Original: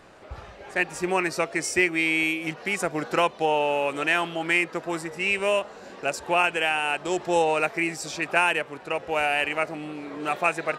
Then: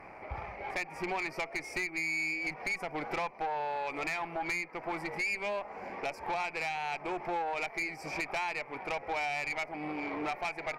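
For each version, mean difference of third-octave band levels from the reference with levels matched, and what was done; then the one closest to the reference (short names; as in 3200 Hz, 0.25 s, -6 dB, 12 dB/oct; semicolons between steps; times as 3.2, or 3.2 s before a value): 6.0 dB: EQ curve 560 Hz 0 dB, 830 Hz +9 dB, 1600 Hz -4 dB, 2300 Hz +13 dB, 3400 Hz -30 dB, 4900 Hz -6 dB, 7300 Hz -19 dB, 12000 Hz -7 dB; compressor 6:1, threshold -28 dBFS, peak gain reduction 17 dB; tube stage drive 28 dB, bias 0.4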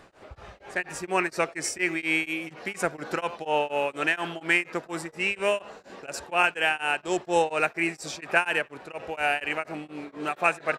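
3.5 dB: dynamic EQ 1600 Hz, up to +5 dB, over -39 dBFS, Q 4.2; speakerphone echo 90 ms, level -19 dB; beating tremolo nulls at 4.2 Hz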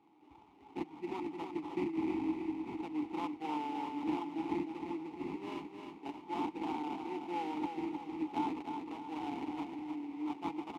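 9.0 dB: sample-rate reducer 2300 Hz, jitter 20%; vowel filter u; feedback echo 0.309 s, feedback 49%, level -6 dB; gain -3 dB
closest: second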